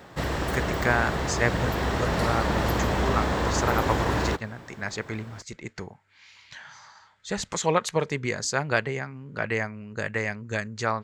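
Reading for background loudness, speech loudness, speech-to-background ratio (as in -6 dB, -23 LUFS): -27.0 LUFS, -29.5 LUFS, -2.5 dB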